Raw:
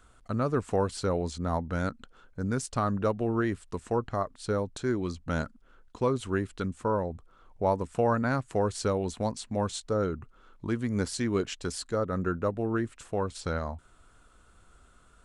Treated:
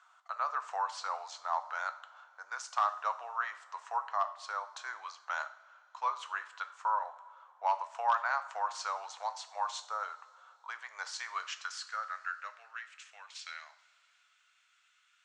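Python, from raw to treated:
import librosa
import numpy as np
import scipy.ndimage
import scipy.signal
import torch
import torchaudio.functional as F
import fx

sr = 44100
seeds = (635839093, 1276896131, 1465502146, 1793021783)

y = fx.filter_sweep_highpass(x, sr, from_hz=1000.0, to_hz=2300.0, start_s=11.19, end_s=12.88, q=2.4)
y = np.clip(y, -10.0 ** (-16.0 / 20.0), 10.0 ** (-16.0 / 20.0))
y = scipy.signal.sosfilt(scipy.signal.cheby1(3, 1.0, [680.0, 6500.0], 'bandpass', fs=sr, output='sos'), y)
y = fx.rev_double_slope(y, sr, seeds[0], early_s=0.46, late_s=3.0, knee_db=-18, drr_db=8.5)
y = y * 10.0 ** (-3.5 / 20.0)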